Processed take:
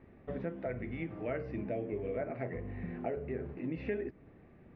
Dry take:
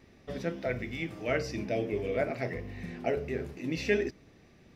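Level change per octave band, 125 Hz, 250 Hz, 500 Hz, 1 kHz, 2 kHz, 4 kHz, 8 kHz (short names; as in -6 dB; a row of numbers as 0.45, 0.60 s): -3.5 dB, -3.5 dB, -5.5 dB, -5.5 dB, -10.5 dB, under -15 dB, n/a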